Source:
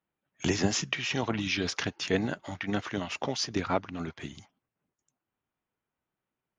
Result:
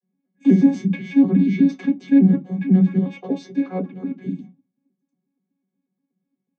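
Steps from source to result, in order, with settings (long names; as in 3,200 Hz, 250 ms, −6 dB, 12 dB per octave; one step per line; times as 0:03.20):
vocoder with an arpeggio as carrier bare fifth, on F#3, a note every 122 ms
0:02.98–0:04.11: low shelf with overshoot 320 Hz −8 dB, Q 1.5
convolution reverb RT60 0.15 s, pre-delay 3 ms, DRR −3.5 dB
level −7.5 dB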